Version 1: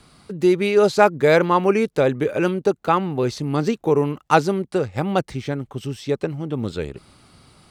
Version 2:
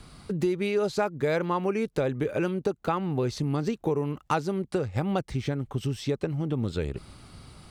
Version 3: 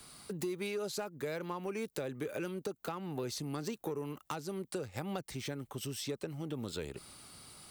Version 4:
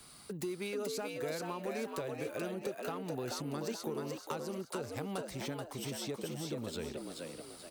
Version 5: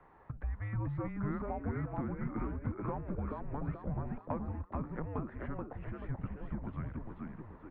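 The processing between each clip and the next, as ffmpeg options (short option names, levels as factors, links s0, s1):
-af "lowshelf=f=98:g=11,acompressor=threshold=0.0562:ratio=4"
-filter_complex "[0:a]asoftclip=type=tanh:threshold=0.141,aemphasis=mode=production:type=bsi,acrossover=split=290[s0][s1];[s1]acompressor=threshold=0.0251:ratio=6[s2];[s0][s2]amix=inputs=2:normalize=0,volume=0.562"
-filter_complex "[0:a]asplit=6[s0][s1][s2][s3][s4][s5];[s1]adelay=432,afreqshift=81,volume=0.668[s6];[s2]adelay=864,afreqshift=162,volume=0.26[s7];[s3]adelay=1296,afreqshift=243,volume=0.101[s8];[s4]adelay=1728,afreqshift=324,volume=0.0398[s9];[s5]adelay=2160,afreqshift=405,volume=0.0155[s10];[s0][s6][s7][s8][s9][s10]amix=inputs=6:normalize=0,volume=0.841"
-af "highpass=f=270:t=q:w=0.5412,highpass=f=270:t=q:w=1.307,lowpass=f=2000:t=q:w=0.5176,lowpass=f=2000:t=q:w=0.7071,lowpass=f=2000:t=q:w=1.932,afreqshift=-300,volume=1.41"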